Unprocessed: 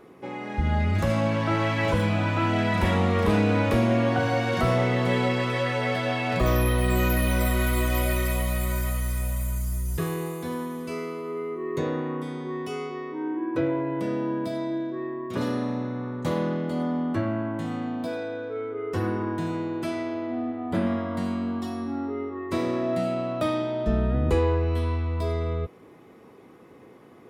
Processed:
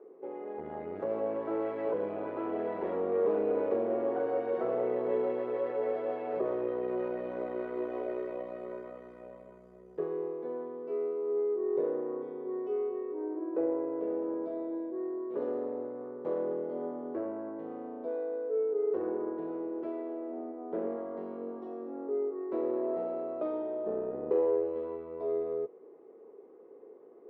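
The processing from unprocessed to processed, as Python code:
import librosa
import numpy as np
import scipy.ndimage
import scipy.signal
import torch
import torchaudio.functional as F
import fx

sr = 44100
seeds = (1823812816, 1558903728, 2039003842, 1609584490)

y = fx.tube_stage(x, sr, drive_db=19.0, bias=0.55)
y = fx.ladder_bandpass(y, sr, hz=470.0, resonance_pct=65)
y = y * librosa.db_to_amplitude(6.5)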